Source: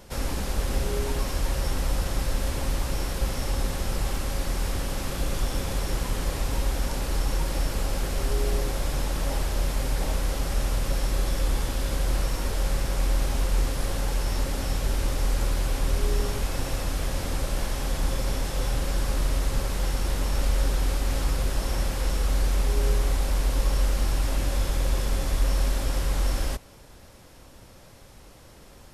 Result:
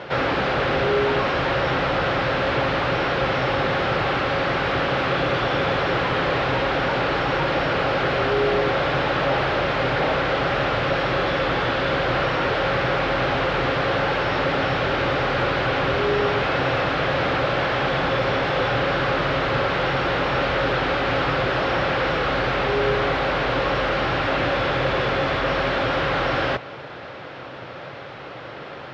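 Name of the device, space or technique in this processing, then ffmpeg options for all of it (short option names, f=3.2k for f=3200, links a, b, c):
overdrive pedal into a guitar cabinet: -filter_complex "[0:a]asplit=2[a][b];[b]highpass=f=720:p=1,volume=25dB,asoftclip=type=tanh:threshold=-12dB[c];[a][c]amix=inputs=2:normalize=0,lowpass=f=1.7k:p=1,volume=-6dB,highpass=96,equalizer=f=130:t=q:w=4:g=8,equalizer=f=220:t=q:w=4:g=-6,equalizer=f=960:t=q:w=4:g=-4,equalizer=f=1.4k:t=q:w=4:g=3,lowpass=f=3.8k:w=0.5412,lowpass=f=3.8k:w=1.3066,volume=3.5dB"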